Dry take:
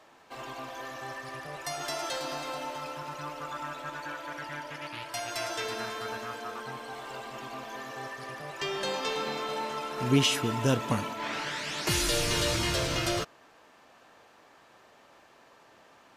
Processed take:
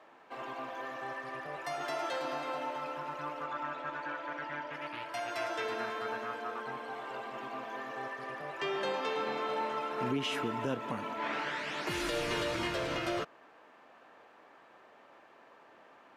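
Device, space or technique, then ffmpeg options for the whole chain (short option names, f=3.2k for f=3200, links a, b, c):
DJ mixer with the lows and highs turned down: -filter_complex "[0:a]acrossover=split=190 2900:gain=0.251 1 0.2[a][b][c];[a][b][c]amix=inputs=3:normalize=0,alimiter=limit=-23.5dB:level=0:latency=1:release=242,asettb=1/sr,asplit=3[d][e][f];[d]atrim=end=3.444[g];[e]atrim=start=3.44:end=4.73,asetpts=PTS-STARTPTS,afade=t=in:d=0.004:c=qsin,afade=t=out:st=1.286:d=0.004:c=qsin,lowpass=6.4k[h];[f]atrim=start=4.726[i];[g][h]acrossfade=d=0.004:c1=hsin:c2=qsin[j];[j][i]acrossfade=d=0.004:c1=qsin:c2=hsin"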